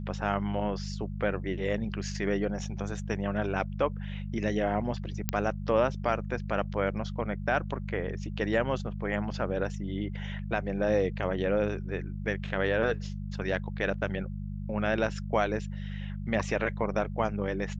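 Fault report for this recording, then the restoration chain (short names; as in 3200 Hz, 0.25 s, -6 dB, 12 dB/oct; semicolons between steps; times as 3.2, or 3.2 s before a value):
hum 50 Hz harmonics 4 -36 dBFS
5.29 pop -9 dBFS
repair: de-click; de-hum 50 Hz, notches 4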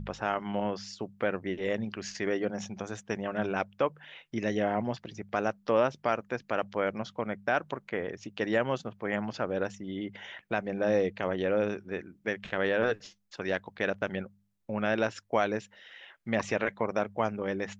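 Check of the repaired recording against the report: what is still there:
none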